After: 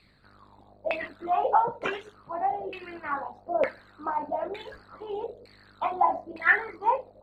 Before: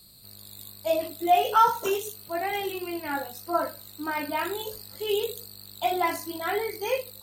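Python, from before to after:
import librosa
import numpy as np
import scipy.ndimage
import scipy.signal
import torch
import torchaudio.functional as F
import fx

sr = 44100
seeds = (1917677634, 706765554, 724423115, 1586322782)

y = fx.hpss(x, sr, part='harmonic', gain_db=-15)
y = fx.filter_lfo_lowpass(y, sr, shape='saw_down', hz=1.1, low_hz=530.0, high_hz=2300.0, q=6.3)
y = F.gain(torch.from_numpy(y), 4.5).numpy()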